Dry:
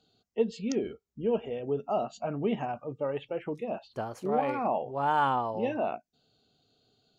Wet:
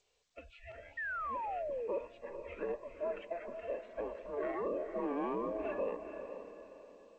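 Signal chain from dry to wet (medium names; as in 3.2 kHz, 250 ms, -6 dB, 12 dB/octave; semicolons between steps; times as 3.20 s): every band turned upside down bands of 500 Hz; 1.98–2.50 s: peaking EQ 820 Hz -12 dB 1.5 oct; peak limiter -25 dBFS, peak gain reduction 10 dB; mistuned SSB -360 Hz 530–3100 Hz; echo that smears into a reverb 450 ms, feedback 41%, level -8 dB; 0.97–1.88 s: painted sound fall 430–1900 Hz -36 dBFS; trim -2.5 dB; G.722 64 kbps 16 kHz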